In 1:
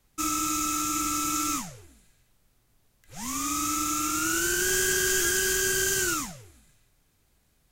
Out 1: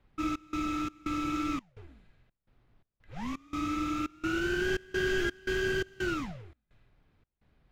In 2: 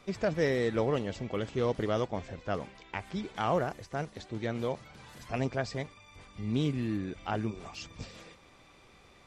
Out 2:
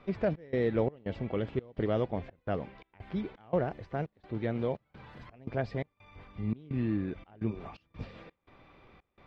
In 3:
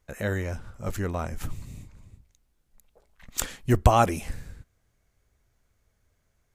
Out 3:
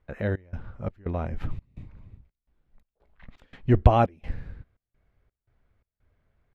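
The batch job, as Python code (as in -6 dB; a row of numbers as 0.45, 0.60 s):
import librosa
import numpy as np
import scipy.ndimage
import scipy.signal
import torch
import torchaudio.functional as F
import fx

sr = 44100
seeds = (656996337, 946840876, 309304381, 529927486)

y = fx.dynamic_eq(x, sr, hz=1200.0, q=1.5, threshold_db=-44.0, ratio=4.0, max_db=-6)
y = fx.step_gate(y, sr, bpm=85, pattern='xx.xx.xxx.xxx.', floor_db=-24.0, edge_ms=4.5)
y = fx.air_absorb(y, sr, metres=370.0)
y = F.gain(torch.from_numpy(y), 2.5).numpy()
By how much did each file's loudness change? -7.5, -1.0, +1.0 LU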